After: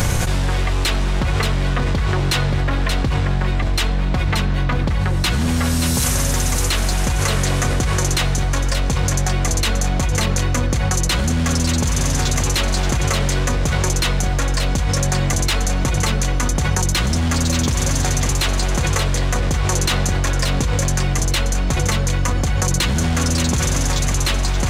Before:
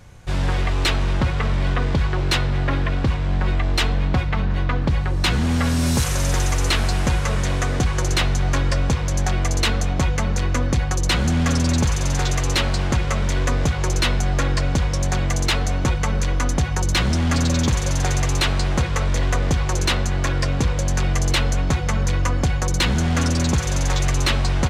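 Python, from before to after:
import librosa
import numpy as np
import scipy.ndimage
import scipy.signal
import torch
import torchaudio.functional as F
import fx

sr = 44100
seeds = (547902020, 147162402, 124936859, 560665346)

p1 = fx.high_shelf(x, sr, hz=7400.0, db=11.5)
p2 = p1 + fx.echo_single(p1, sr, ms=579, db=-8.5, dry=0)
p3 = fx.env_flatten(p2, sr, amount_pct=100)
y = p3 * librosa.db_to_amplitude(-3.0)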